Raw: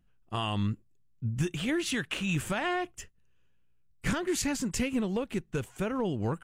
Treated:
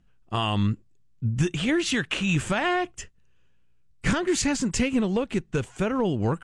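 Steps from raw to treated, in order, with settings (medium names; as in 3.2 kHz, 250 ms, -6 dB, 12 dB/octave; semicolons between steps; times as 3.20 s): low-pass 8.7 kHz 24 dB/octave; trim +6 dB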